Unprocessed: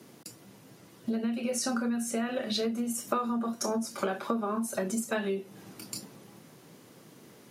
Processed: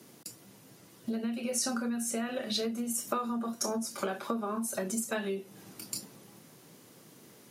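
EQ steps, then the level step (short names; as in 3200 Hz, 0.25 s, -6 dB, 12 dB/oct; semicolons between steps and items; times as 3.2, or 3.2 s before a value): high shelf 4600 Hz +6.5 dB; -3.0 dB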